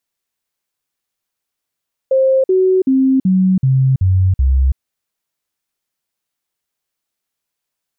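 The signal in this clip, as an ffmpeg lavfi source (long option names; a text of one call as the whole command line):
ffmpeg -f lavfi -i "aevalsrc='0.355*clip(min(mod(t,0.38),0.33-mod(t,0.38))/0.005,0,1)*sin(2*PI*529*pow(2,-floor(t/0.38)/2)*mod(t,0.38))':duration=2.66:sample_rate=44100" out.wav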